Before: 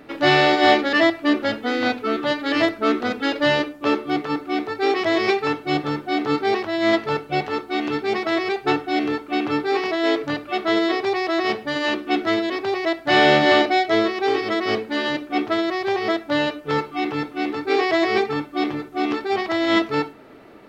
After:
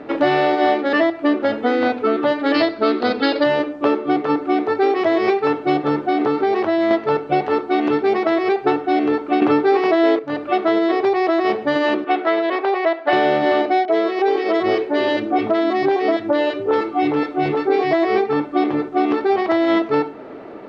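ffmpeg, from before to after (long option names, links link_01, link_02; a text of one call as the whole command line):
ffmpeg -i in.wav -filter_complex "[0:a]asettb=1/sr,asplit=3[link_01][link_02][link_03];[link_01]atrim=end=2.544[link_04];[link_02]atrim=start=2.54:end=3.44,asetpts=PTS-STARTPTS,afade=type=in:duration=0.004:curve=qsin,afade=type=out:start_time=0.896:duration=0.004:curve=qsin,lowpass=frequency=4500:width_type=q:width=5.4[link_05];[link_03]atrim=start=3.436[link_06];[link_04][link_05]acrossfade=duration=0.004:curve1=hsin:curve2=qsin[link_07];[link_07][link_06]acrossfade=duration=0.004:curve1=qsin:curve2=hsin,asettb=1/sr,asplit=3[link_08][link_09][link_10];[link_08]atrim=end=6.054[link_11];[link_09]atrim=start=6.05:end=6.91,asetpts=PTS-STARTPTS,afade=type=in:duration=0.004:curve=qsin,afade=type=out:start_time=0.856:duration=0.004:curve=qsin,acompressor=threshold=-21dB:ratio=6:attack=3.2:release=140:knee=1:detection=peak[link_12];[link_10]atrim=start=6.906[link_13];[link_11][link_12]acrossfade=duration=0.004:curve1=hsin:curve2=qsin[link_14];[link_14][link_13]acrossfade=duration=0.004:curve1=qsin:curve2=hsin,asettb=1/sr,asplit=3[link_15][link_16][link_17];[link_15]atrim=end=12.044[link_18];[link_16]atrim=start=12.04:end=13.13,asetpts=PTS-STARTPTS,afade=type=in:duration=0.004:curve=qsin,afade=type=out:start_time=1.086:duration=0.004:curve=qsin,highpass=510,lowpass=3700[link_19];[link_17]atrim=start=13.126[link_20];[link_18][link_19]acrossfade=duration=0.004:curve1=hsin:curve2=qsin[link_21];[link_21][link_20]acrossfade=duration=0.004:curve1=qsin:curve2=hsin,asettb=1/sr,asplit=3[link_22][link_23][link_24];[link_22]atrim=end=13.854[link_25];[link_23]atrim=start=13.85:end=17.93,asetpts=PTS-STARTPTS,afade=type=in:duration=0.004:curve=qsin,afade=type=out:start_time=4.076:duration=0.004:curve=qsin,acrossover=split=260|1300[link_26][link_27][link_28];[link_28]adelay=30[link_29];[link_26]adelay=720[link_30];[link_30][link_27][link_29]amix=inputs=3:normalize=0,atrim=end_sample=179928[link_31];[link_24]atrim=start=17.926[link_32];[link_25][link_31]acrossfade=duration=0.004:curve1=hsin:curve2=qsin[link_33];[link_33][link_32]acrossfade=duration=0.004:curve1=qsin:curve2=hsin,asplit=3[link_34][link_35][link_36];[link_34]atrim=end=9.422[link_37];[link_35]atrim=start=9.418:end=10.192,asetpts=PTS-STARTPTS,volume=11dB[link_38];[link_36]atrim=start=10.188[link_39];[link_37][link_38]acrossfade=duration=0.004:curve1=hsin:curve2=hsin[link_40];[link_40][link_39]acrossfade=duration=0.004:curve1=hsin:curve2=hsin,lowpass=5600,equalizer=frequency=520:width=0.35:gain=12,acompressor=threshold=-14dB:ratio=6" out.wav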